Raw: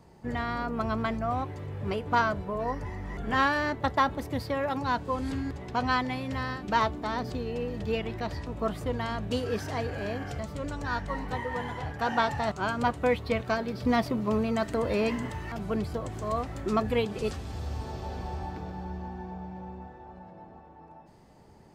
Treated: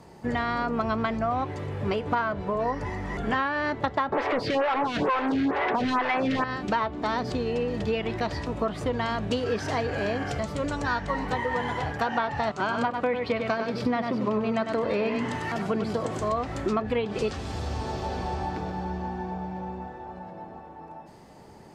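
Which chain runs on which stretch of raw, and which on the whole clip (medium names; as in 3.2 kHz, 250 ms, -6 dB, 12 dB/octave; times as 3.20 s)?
4.12–6.44 s: overdrive pedal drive 35 dB, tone 4 kHz, clips at -13 dBFS + lamp-driven phase shifter 2.2 Hz
12.50–16.20 s: high-pass 120 Hz + delay 98 ms -7 dB
whole clip: low-pass that closes with the level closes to 2.9 kHz, closed at -21.5 dBFS; bass shelf 120 Hz -8.5 dB; compression, threshold -31 dBFS; trim +8 dB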